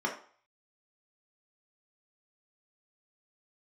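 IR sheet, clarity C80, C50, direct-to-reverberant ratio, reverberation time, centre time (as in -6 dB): 13.0 dB, 8.5 dB, -1.5 dB, 0.50 s, 20 ms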